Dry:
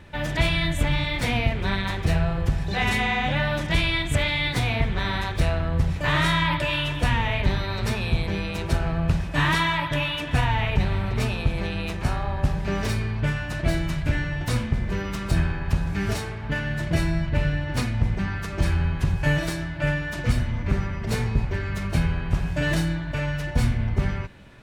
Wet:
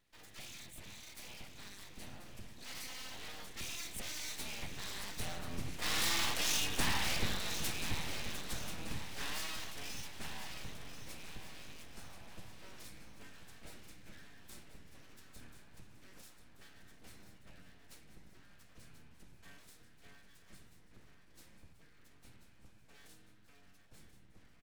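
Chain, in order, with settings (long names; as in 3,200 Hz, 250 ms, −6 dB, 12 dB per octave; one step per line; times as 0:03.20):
source passing by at 0:06.79, 13 m/s, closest 10 metres
full-wave rectification
first-order pre-emphasis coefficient 0.8
on a send: repeating echo 1,035 ms, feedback 50%, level −10 dB
on the sum: level +2.5 dB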